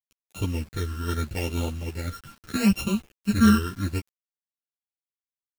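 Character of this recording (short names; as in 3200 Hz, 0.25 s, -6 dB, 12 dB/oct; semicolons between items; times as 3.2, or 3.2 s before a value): a buzz of ramps at a fixed pitch in blocks of 32 samples; phasing stages 12, 0.76 Hz, lowest notch 740–1700 Hz; a quantiser's noise floor 8-bit, dither none; a shimmering, thickened sound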